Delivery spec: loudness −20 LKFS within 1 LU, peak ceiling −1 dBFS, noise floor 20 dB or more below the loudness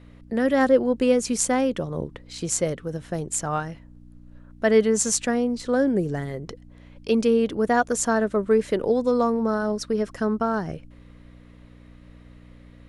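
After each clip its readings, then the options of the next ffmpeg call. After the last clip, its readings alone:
mains hum 60 Hz; hum harmonics up to 300 Hz; level of the hum −47 dBFS; integrated loudness −23.0 LKFS; sample peak −5.5 dBFS; target loudness −20.0 LKFS
→ -af "bandreject=frequency=60:width_type=h:width=4,bandreject=frequency=120:width_type=h:width=4,bandreject=frequency=180:width_type=h:width=4,bandreject=frequency=240:width_type=h:width=4,bandreject=frequency=300:width_type=h:width=4"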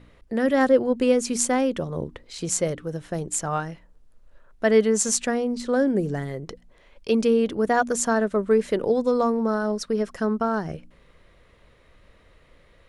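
mains hum none found; integrated loudness −23.5 LKFS; sample peak −6.0 dBFS; target loudness −20.0 LKFS
→ -af "volume=3.5dB"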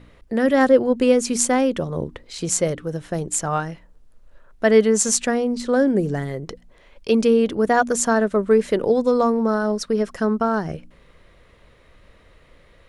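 integrated loudness −20.0 LKFS; sample peak −2.5 dBFS; background noise floor −53 dBFS

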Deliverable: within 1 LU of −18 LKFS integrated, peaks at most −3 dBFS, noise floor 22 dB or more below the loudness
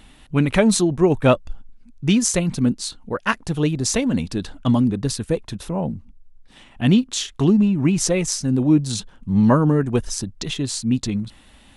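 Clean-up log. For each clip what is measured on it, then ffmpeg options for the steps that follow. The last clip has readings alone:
integrated loudness −20.5 LKFS; sample peak −2.5 dBFS; target loudness −18.0 LKFS
→ -af "volume=2.5dB,alimiter=limit=-3dB:level=0:latency=1"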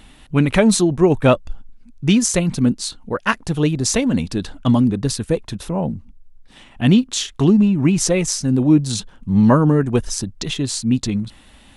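integrated loudness −18.0 LKFS; sample peak −3.0 dBFS; background noise floor −47 dBFS

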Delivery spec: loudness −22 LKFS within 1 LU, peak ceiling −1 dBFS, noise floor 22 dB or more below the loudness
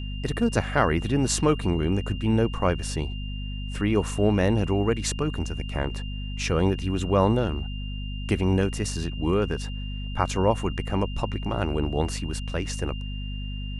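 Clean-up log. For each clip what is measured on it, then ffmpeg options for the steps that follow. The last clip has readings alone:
mains hum 50 Hz; hum harmonics up to 250 Hz; level of the hum −30 dBFS; interfering tone 2,800 Hz; level of the tone −41 dBFS; integrated loudness −26.5 LKFS; sample peak −6.0 dBFS; target loudness −22.0 LKFS
→ -af "bandreject=frequency=50:width_type=h:width=6,bandreject=frequency=100:width_type=h:width=6,bandreject=frequency=150:width_type=h:width=6,bandreject=frequency=200:width_type=h:width=6,bandreject=frequency=250:width_type=h:width=6"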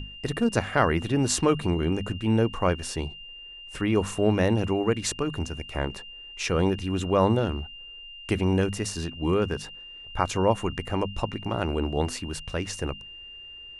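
mains hum none found; interfering tone 2,800 Hz; level of the tone −41 dBFS
→ -af "bandreject=frequency=2800:width=30"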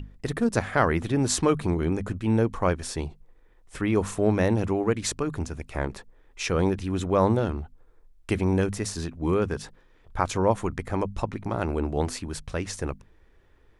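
interfering tone none found; integrated loudness −27.0 LKFS; sample peak −7.5 dBFS; target loudness −22.0 LKFS
→ -af "volume=5dB"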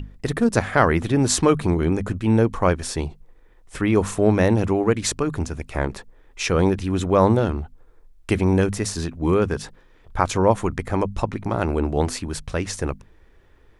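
integrated loudness −22.0 LKFS; sample peak −2.5 dBFS; background noise floor −53 dBFS

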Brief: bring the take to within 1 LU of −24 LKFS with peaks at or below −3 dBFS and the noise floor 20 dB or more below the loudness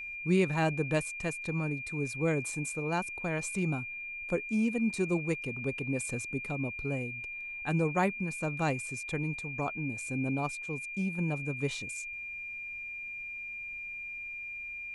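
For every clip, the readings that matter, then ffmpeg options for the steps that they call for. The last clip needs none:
interfering tone 2,400 Hz; level of the tone −38 dBFS; integrated loudness −33.0 LKFS; sample peak −15.5 dBFS; target loudness −24.0 LKFS
→ -af "bandreject=frequency=2400:width=30"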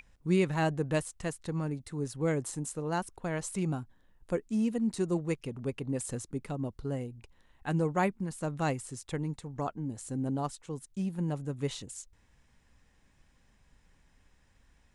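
interfering tone none found; integrated loudness −34.0 LKFS; sample peak −16.0 dBFS; target loudness −24.0 LKFS
→ -af "volume=10dB"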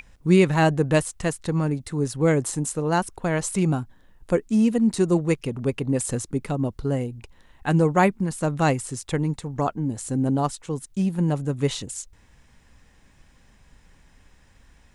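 integrated loudness −24.0 LKFS; sample peak −6.0 dBFS; background noise floor −57 dBFS

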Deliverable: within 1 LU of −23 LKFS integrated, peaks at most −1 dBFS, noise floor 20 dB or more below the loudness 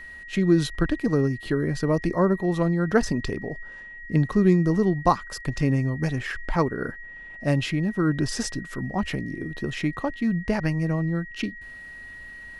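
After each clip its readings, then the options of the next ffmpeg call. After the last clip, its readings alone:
interfering tone 1,900 Hz; level of the tone −39 dBFS; integrated loudness −25.0 LKFS; sample peak −6.0 dBFS; target loudness −23.0 LKFS
→ -af "bandreject=frequency=1900:width=30"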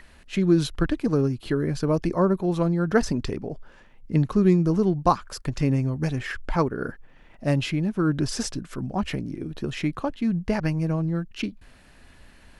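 interfering tone none found; integrated loudness −25.0 LKFS; sample peak −6.0 dBFS; target loudness −23.0 LKFS
→ -af "volume=2dB"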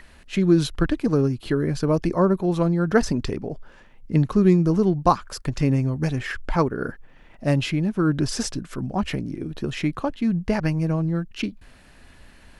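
integrated loudness −23.0 LKFS; sample peak −4.0 dBFS; background noise floor −50 dBFS

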